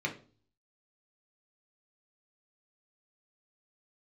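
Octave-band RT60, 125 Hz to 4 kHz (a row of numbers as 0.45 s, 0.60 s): 0.70 s, 0.55 s, 0.45 s, 0.35 s, 0.30 s, 0.35 s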